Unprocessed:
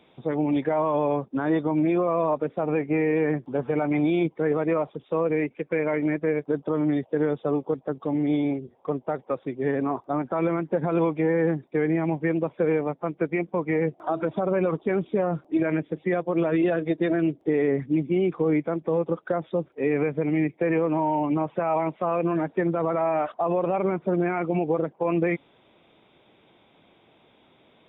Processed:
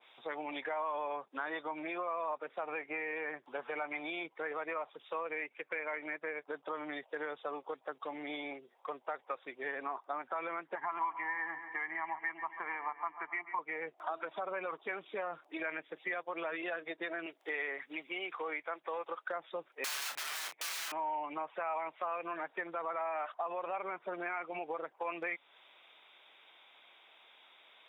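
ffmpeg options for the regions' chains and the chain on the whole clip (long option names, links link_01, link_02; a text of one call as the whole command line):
ffmpeg -i in.wav -filter_complex "[0:a]asettb=1/sr,asplit=3[link_01][link_02][link_03];[link_01]atrim=end=10.754[link_04];[link_02]atrim=start=10.75:end=13.59,asetpts=PTS-STARTPTS,afade=type=in:duration=0.004:curve=qsin,afade=type=out:start_time=2.836:duration=0.004:curve=qsin,highpass=270,equalizer=frequency=280:width_type=q:width=4:gain=-5,equalizer=frequency=550:width_type=q:width=4:gain=-8,equalizer=frequency=990:width_type=q:width=4:gain=6,equalizer=frequency=1600:width_type=q:width=4:gain=6,lowpass=frequency=2600:width=0.5412,lowpass=frequency=2600:width=1.3066,aecho=1:1:1:0.8,atrim=end_sample=125244,aecho=1:1:137|274|411|548|685:0.2|0.108|0.0582|0.0314|0.017,atrim=end_sample=125244[link_05];[link_03]atrim=start=13.586[link_06];[link_04][link_05]acrossfade=duration=0.004:curve1=hsin:curve2=qsin[link_07];[link_07][link_06]acrossfade=duration=0.004:curve1=qsin:curve2=hsin,asettb=1/sr,asplit=3[link_08][link_09][link_10];[link_08]atrim=end=17.264[link_11];[link_09]atrim=start=17.26:end=19.23,asetpts=PTS-STARTPTS,afade=type=in:duration=0.004:curve=qsin,afade=type=out:start_time=1.966:duration=0.004:curve=qsin,highpass=frequency=790:poles=1,acontrast=26[link_12];[link_10]atrim=start=19.226[link_13];[link_11][link_12]acrossfade=duration=0.004:curve1=hsin:curve2=qsin[link_14];[link_14][link_13]acrossfade=duration=0.004:curve1=qsin:curve2=hsin,asettb=1/sr,asplit=3[link_15][link_16][link_17];[link_15]atrim=end=19.844[link_18];[link_16]atrim=start=19.84:end=20.92,asetpts=PTS-STARTPTS,afade=type=in:duration=0.004:curve=qsin,afade=type=out:start_time=1.076:duration=0.004:curve=qsin,aeval=exprs='(mod(28.2*val(0)+1,2)-1)/28.2':channel_layout=same,asplit=2[link_19][link_20];[link_20]adelay=32,volume=-5.5dB[link_21];[link_19][link_21]amix=inputs=2:normalize=0,atrim=end_sample=47628[link_22];[link_17]atrim=start=20.916[link_23];[link_18][link_22]acrossfade=duration=0.004:curve1=hsin:curve2=qsin[link_24];[link_24][link_23]acrossfade=duration=0.004:curve1=qsin:curve2=hsin,highpass=1200,acompressor=threshold=-40dB:ratio=2.5,adynamicequalizer=threshold=0.00251:dfrequency=2000:dqfactor=0.7:tfrequency=2000:tqfactor=0.7:attack=5:release=100:ratio=0.375:range=2.5:mode=cutabove:tftype=highshelf,volume=3.5dB" out.wav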